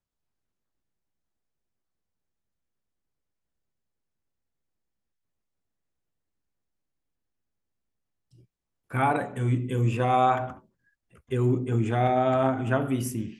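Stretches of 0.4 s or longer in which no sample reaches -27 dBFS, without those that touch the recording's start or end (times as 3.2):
10.5–11.32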